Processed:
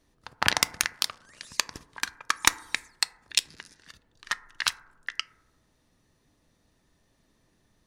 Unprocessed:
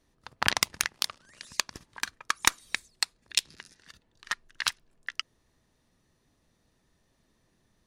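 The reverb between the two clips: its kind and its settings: FDN reverb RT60 0.88 s, low-frequency decay 0.8×, high-frequency decay 0.25×, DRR 14.5 dB; gain +2 dB

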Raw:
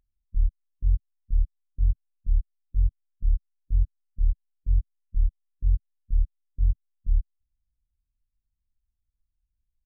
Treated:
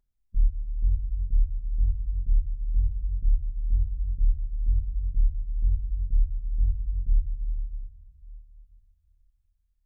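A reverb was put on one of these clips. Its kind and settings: shoebox room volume 1900 m³, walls mixed, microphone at 1.3 m; gain -2 dB

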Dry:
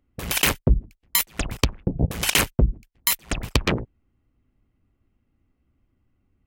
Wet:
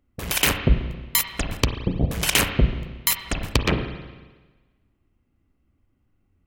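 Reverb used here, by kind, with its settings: spring tank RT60 1.3 s, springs 33/45 ms, chirp 25 ms, DRR 6.5 dB

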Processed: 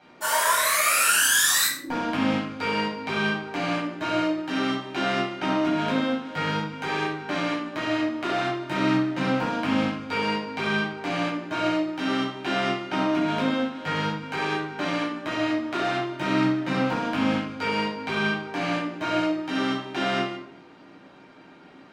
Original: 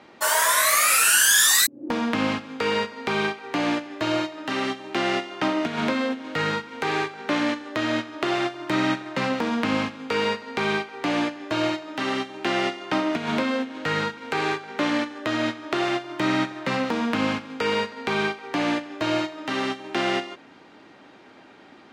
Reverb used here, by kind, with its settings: shoebox room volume 880 m³, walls furnished, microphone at 8 m; gain -11 dB

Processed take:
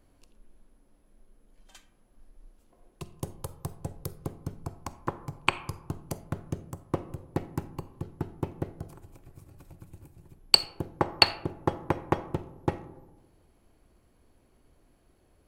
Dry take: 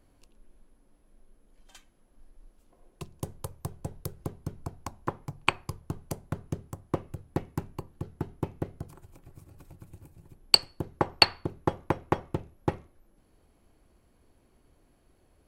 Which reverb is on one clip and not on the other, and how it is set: digital reverb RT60 1.2 s, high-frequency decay 0.3×, pre-delay 5 ms, DRR 13.5 dB

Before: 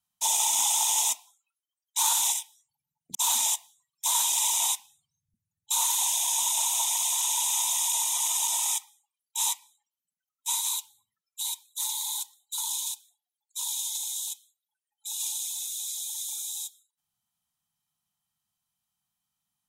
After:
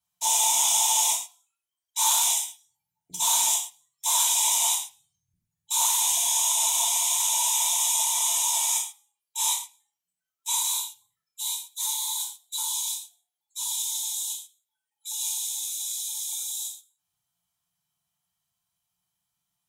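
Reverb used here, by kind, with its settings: non-linear reverb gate 0.16 s falling, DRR -5.5 dB; gain -4 dB

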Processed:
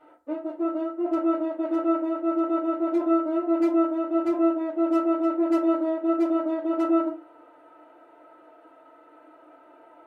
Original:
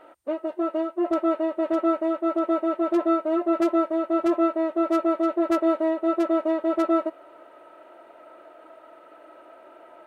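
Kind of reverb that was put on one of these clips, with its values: FDN reverb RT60 0.35 s, low-frequency decay 1.1×, high-frequency decay 0.55×, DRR -8.5 dB; gain -13.5 dB

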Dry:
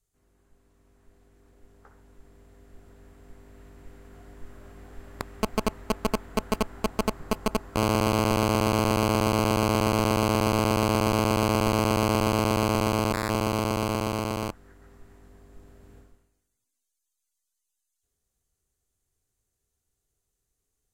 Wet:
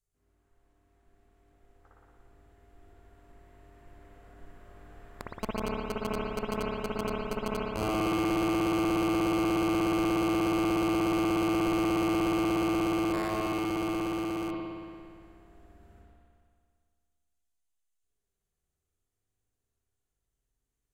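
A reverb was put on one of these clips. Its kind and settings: spring tank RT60 2.1 s, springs 57 ms, chirp 65 ms, DRR -5 dB; gain -9.5 dB

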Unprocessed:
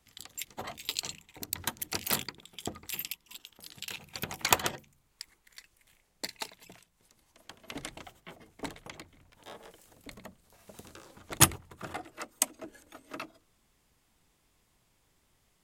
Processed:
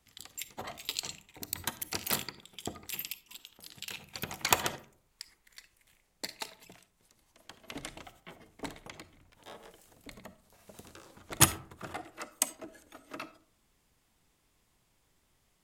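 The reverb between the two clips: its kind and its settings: digital reverb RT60 0.55 s, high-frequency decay 0.45×, pre-delay 10 ms, DRR 14.5 dB; gain -1.5 dB

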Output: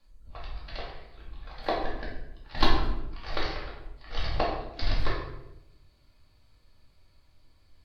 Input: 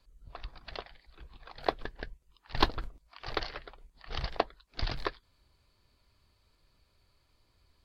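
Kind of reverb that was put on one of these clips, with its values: shoebox room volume 280 m³, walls mixed, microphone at 2.3 m; gain -3.5 dB

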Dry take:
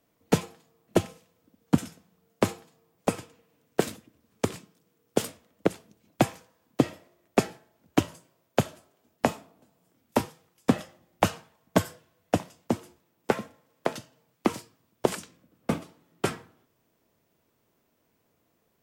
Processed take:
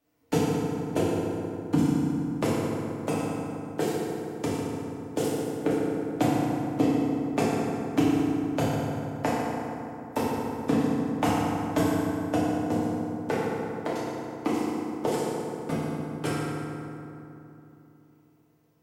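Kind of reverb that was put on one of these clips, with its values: FDN reverb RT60 3 s, low-frequency decay 1.25×, high-frequency decay 0.5×, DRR -8.5 dB; gain -8.5 dB

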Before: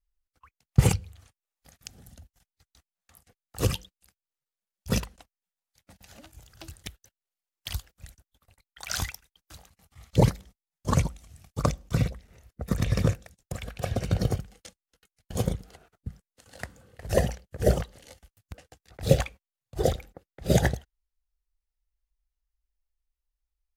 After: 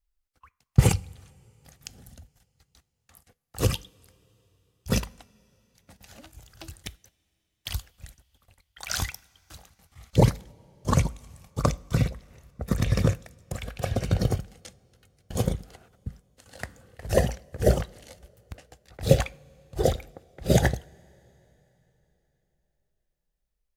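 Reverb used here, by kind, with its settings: two-slope reverb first 0.38 s, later 3.8 s, from -18 dB, DRR 19 dB; gain +1.5 dB

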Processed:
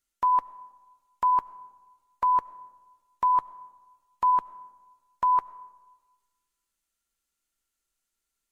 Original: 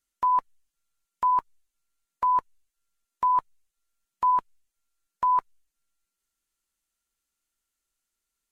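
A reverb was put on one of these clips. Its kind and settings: digital reverb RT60 1.3 s, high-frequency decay 0.45×, pre-delay 50 ms, DRR 19 dB

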